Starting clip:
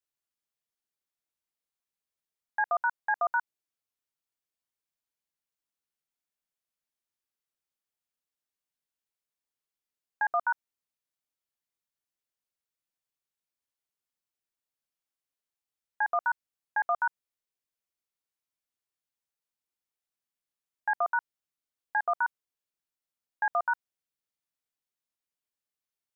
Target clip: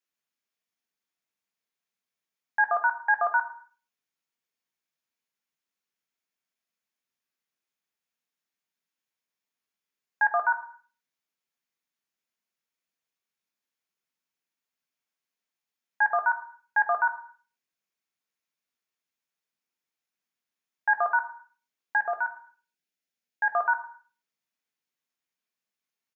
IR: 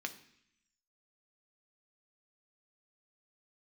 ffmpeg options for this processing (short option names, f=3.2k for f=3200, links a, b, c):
-filter_complex "[0:a]asettb=1/sr,asplit=3[a][b][c];[a]atrim=end=21.964[d];[b]atrim=start=21.96:end=23.54,asetpts=PTS-STARTPTS,afade=t=in:d=0.004:c=qsin,afade=t=out:st=1.576:d=0.004:c=qsin,equalizer=f=1.1k:t=o:w=0.54:g=-11[e];[c]atrim=start=23.536[f];[d][e]acrossfade=d=0.004:c1=hsin:c2=qsin[g];[g][f]acrossfade=d=0.004:c1=qsin:c2=hsin,aecho=1:1:104|208:0.133|0.024[h];[1:a]atrim=start_sample=2205,afade=t=out:st=0.33:d=0.01,atrim=end_sample=14994[i];[h][i]afir=irnorm=-1:irlink=0,volume=4dB"